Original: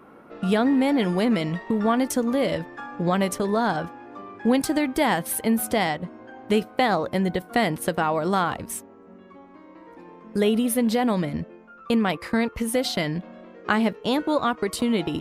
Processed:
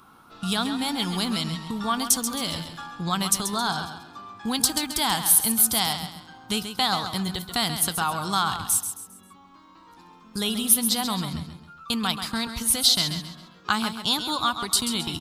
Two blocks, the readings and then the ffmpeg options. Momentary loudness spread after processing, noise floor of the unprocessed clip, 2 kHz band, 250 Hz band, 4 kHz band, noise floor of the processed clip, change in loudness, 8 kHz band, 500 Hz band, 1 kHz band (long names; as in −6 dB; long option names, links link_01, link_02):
16 LU, −48 dBFS, −3.0 dB, −6.5 dB, +9.0 dB, −52 dBFS, +0.5 dB, +11.5 dB, −12.5 dB, −1.5 dB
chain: -af "firequalizer=gain_entry='entry(100,0);entry(240,-9);entry(550,-18);entry(790,-4);entry(1300,1);entry(1900,-9);entry(3600,10)':delay=0.05:min_phase=1,aecho=1:1:134|268|402|536:0.355|0.124|0.0435|0.0152,volume=1dB"